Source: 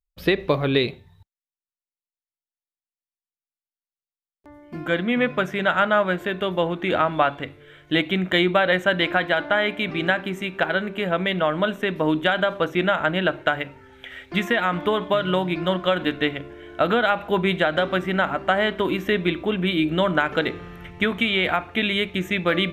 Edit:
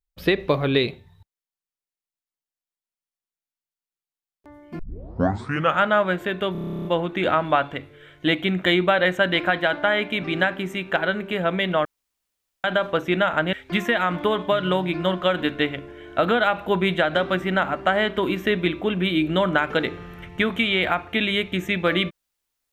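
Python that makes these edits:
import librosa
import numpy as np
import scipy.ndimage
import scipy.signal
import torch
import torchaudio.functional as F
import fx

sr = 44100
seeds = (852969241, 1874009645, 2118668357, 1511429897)

y = fx.edit(x, sr, fx.tape_start(start_s=4.79, length_s=1.01),
    fx.stutter(start_s=6.52, slice_s=0.03, count=12),
    fx.room_tone_fill(start_s=11.52, length_s=0.79),
    fx.cut(start_s=13.2, length_s=0.95), tone=tone)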